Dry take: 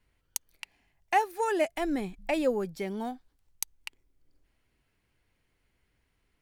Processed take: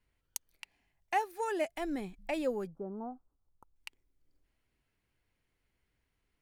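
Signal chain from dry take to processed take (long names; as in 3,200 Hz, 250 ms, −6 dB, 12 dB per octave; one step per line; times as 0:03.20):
0:02.67–0:03.76: elliptic low-pass filter 1,300 Hz, stop band 40 dB
level −6 dB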